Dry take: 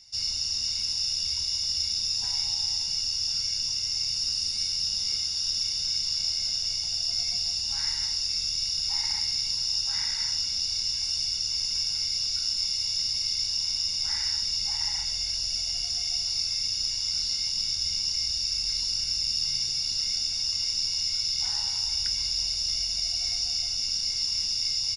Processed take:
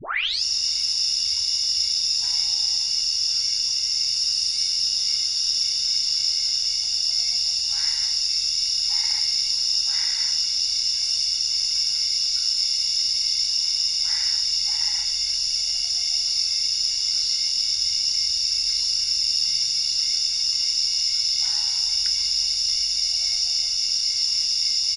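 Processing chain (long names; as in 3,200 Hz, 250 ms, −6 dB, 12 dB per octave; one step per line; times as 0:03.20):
turntable start at the beginning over 0.43 s
tilt shelving filter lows −6 dB, about 880 Hz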